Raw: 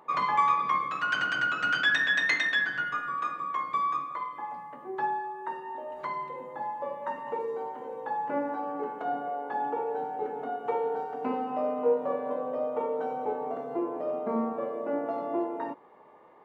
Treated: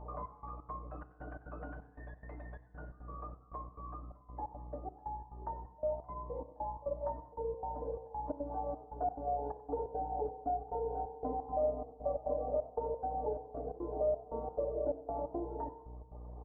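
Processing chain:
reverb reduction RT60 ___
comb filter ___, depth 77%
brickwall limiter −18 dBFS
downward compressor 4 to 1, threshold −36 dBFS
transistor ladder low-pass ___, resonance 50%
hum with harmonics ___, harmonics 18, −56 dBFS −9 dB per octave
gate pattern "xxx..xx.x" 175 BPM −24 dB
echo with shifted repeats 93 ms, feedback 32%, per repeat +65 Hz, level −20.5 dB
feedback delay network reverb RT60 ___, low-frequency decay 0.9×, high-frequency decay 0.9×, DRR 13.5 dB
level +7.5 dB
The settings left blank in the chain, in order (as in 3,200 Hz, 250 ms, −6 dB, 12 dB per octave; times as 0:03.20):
1.2 s, 6.7 ms, 800 Hz, 60 Hz, 1.3 s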